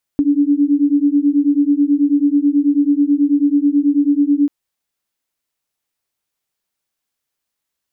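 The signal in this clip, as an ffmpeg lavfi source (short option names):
-f lavfi -i "aevalsrc='0.2*(sin(2*PI*283*t)+sin(2*PI*292.2*t))':d=4.29:s=44100"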